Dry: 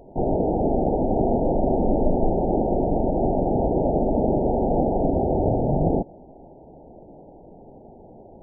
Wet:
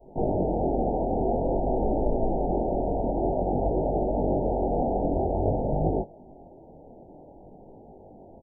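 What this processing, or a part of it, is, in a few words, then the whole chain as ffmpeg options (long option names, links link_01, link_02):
double-tracked vocal: -filter_complex "[0:a]adynamicequalizer=threshold=0.02:dfrequency=210:dqfactor=0.72:tfrequency=210:tqfactor=0.72:attack=5:release=100:ratio=0.375:range=2:mode=cutabove:tftype=bell,asplit=2[link_01][link_02];[link_02]adelay=21,volume=-13dB[link_03];[link_01][link_03]amix=inputs=2:normalize=0,flanger=delay=18.5:depth=6.8:speed=0.51"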